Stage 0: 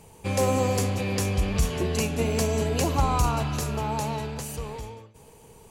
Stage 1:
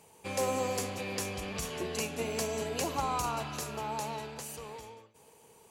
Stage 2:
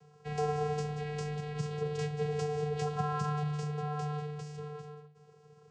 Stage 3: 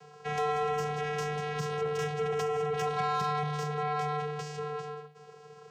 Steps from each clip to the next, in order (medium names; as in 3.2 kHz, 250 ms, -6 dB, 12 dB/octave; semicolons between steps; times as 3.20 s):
high-pass 400 Hz 6 dB/octave; trim -5 dB
vocoder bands 8, square 149 Hz; trim +1.5 dB
overdrive pedal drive 22 dB, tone 4.5 kHz, clips at -20.5 dBFS; trim -2.5 dB